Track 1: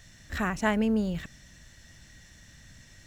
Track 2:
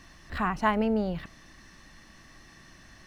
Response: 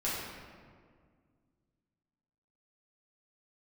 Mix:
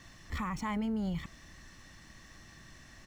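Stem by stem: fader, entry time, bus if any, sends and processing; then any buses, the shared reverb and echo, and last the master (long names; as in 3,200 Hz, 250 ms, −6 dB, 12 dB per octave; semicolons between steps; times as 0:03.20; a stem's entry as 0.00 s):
−5.5 dB, 0.00 s, no send, running median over 3 samples
−3.5 dB, 1.2 ms, no send, downward compressor 1.5 to 1, threshold −33 dBFS, peak gain reduction 5 dB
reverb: not used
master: brickwall limiter −27.5 dBFS, peak gain reduction 8 dB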